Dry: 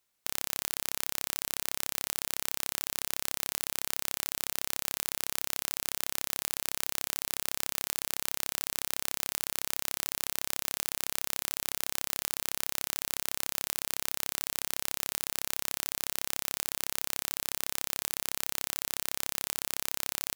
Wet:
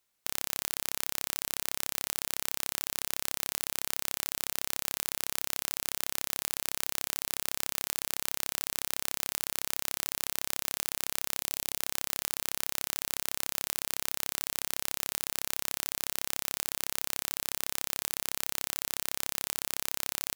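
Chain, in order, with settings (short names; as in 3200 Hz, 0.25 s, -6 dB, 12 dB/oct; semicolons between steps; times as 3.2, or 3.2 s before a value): 11.4–11.8 bell 1400 Hz -6.5 dB 0.77 oct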